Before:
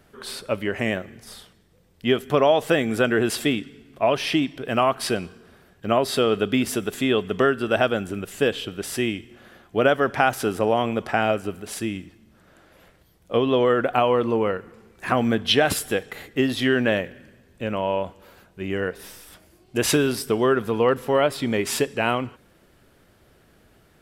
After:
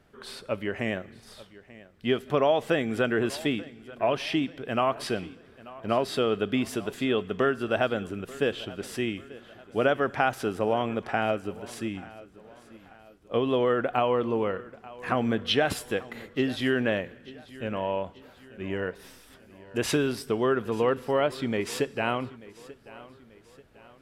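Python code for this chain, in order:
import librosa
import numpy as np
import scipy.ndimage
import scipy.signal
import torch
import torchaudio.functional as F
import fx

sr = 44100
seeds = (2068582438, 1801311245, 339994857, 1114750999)

p1 = fx.high_shelf(x, sr, hz=7400.0, db=-9.5)
p2 = p1 + fx.echo_feedback(p1, sr, ms=887, feedback_pct=44, wet_db=-19.5, dry=0)
y = p2 * librosa.db_to_amplitude(-5.0)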